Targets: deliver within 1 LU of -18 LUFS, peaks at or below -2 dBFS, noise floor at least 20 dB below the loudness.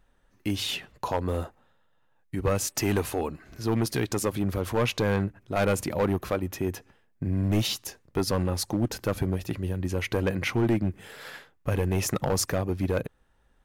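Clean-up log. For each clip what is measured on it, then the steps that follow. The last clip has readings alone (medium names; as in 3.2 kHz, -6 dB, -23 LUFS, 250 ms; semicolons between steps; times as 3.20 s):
clipped samples 1.4%; clipping level -18.5 dBFS; loudness -28.5 LUFS; peak level -18.5 dBFS; loudness target -18.0 LUFS
-> clip repair -18.5 dBFS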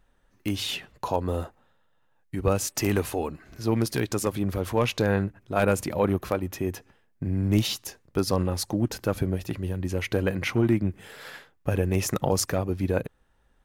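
clipped samples 0.0%; loudness -27.5 LUFS; peak level -9.5 dBFS; loudness target -18.0 LUFS
-> trim +9.5 dB; peak limiter -2 dBFS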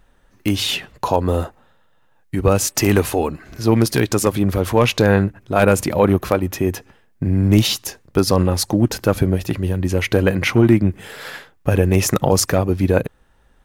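loudness -18.0 LUFS; peak level -2.0 dBFS; noise floor -56 dBFS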